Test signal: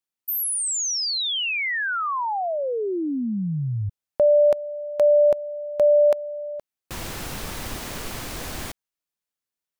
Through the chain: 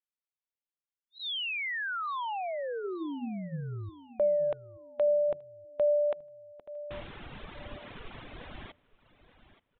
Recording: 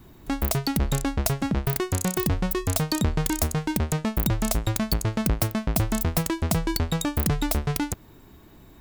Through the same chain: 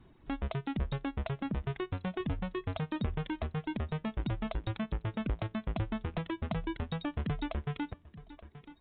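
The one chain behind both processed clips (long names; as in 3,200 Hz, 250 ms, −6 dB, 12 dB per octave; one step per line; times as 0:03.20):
downsampling to 8,000 Hz
hum removal 86.39 Hz, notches 5
on a send: repeating echo 878 ms, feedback 31%, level −15.5 dB
on the sum: reverb reduction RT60 1.2 s
level −8.5 dB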